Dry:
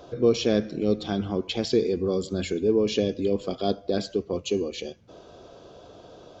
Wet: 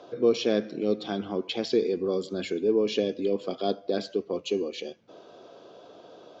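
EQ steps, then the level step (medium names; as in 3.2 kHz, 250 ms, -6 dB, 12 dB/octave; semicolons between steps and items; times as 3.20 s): band-pass 230–5200 Hz; -1.0 dB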